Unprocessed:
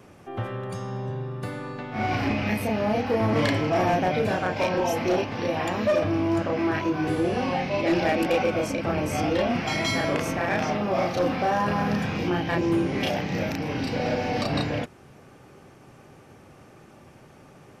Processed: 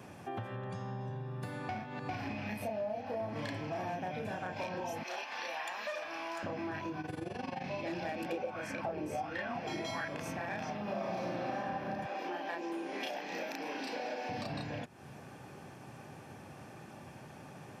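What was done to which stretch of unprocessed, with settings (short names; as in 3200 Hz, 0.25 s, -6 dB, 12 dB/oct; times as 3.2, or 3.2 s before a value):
0.56–1.01 air absorption 84 m
1.69–2.09 reverse
2.62–3.29 bell 620 Hz +14 dB 0.41 oct
3.96–4.53 bell 4400 Hz -6 dB 0.25 oct
5.03–6.43 HPF 1000 Hz
7.01–7.64 AM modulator 23 Hz, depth 70%
8.32–10.08 LFO bell 1.4 Hz 350–1800 Hz +16 dB
10.83–11.55 reverb throw, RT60 2.9 s, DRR -10.5 dB
12.06–14.29 HPF 300 Hz 24 dB/oct
whole clip: comb 1.2 ms, depth 31%; compressor, threshold -37 dBFS; HPF 100 Hz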